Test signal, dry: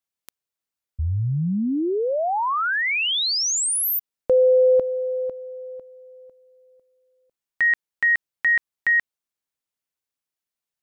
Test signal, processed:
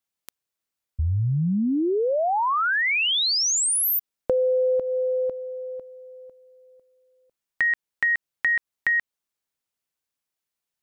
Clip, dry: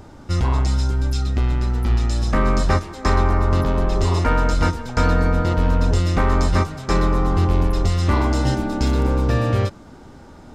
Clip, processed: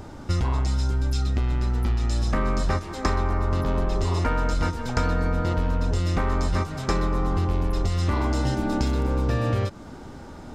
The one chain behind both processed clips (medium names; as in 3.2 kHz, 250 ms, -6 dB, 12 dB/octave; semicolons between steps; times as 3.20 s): compression, threshold -22 dBFS; trim +2 dB